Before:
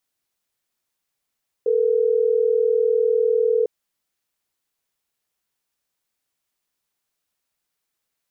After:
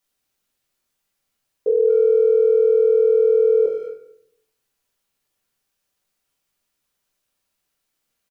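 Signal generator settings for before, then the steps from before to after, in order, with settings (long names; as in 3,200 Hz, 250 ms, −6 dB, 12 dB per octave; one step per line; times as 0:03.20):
call progress tone ringback tone, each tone −18.5 dBFS
far-end echo of a speakerphone 220 ms, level −19 dB
rectangular room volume 150 cubic metres, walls mixed, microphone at 1.2 metres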